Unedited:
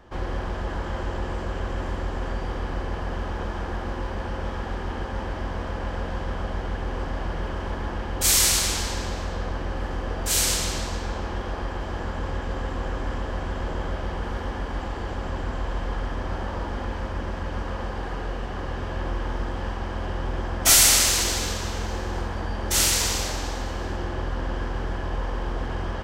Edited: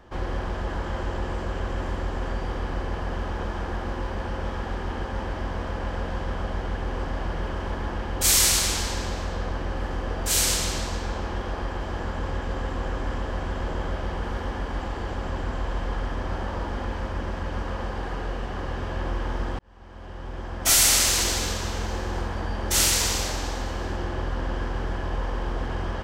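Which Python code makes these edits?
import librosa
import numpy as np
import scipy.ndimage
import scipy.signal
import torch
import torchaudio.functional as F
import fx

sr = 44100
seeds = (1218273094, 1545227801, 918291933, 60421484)

y = fx.edit(x, sr, fx.fade_in_span(start_s=19.59, length_s=1.64), tone=tone)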